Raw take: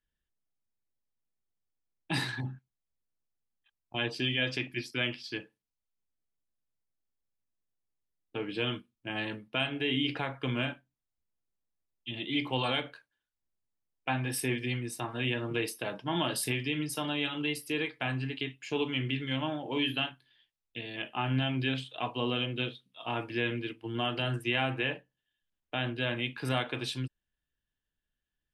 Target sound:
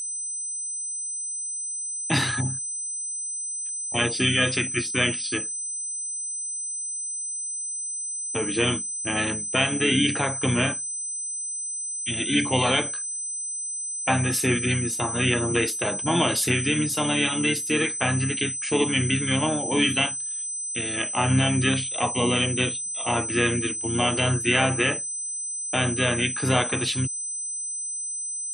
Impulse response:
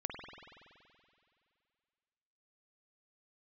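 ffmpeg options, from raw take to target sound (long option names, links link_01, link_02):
-filter_complex "[0:a]aeval=exprs='val(0)+0.0141*sin(2*PI*8100*n/s)':channel_layout=same,asplit=2[link_01][link_02];[link_02]asetrate=33038,aresample=44100,atempo=1.33484,volume=-8dB[link_03];[link_01][link_03]amix=inputs=2:normalize=0,volume=8dB"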